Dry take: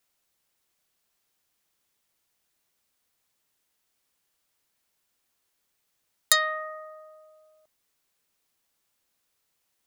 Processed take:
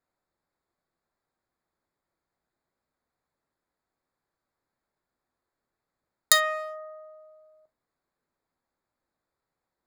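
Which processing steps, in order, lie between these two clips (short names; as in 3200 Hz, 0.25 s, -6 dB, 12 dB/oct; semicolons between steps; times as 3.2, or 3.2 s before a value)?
Wiener smoothing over 15 samples; non-linear reverb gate 90 ms falling, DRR 10.5 dB; gain +1 dB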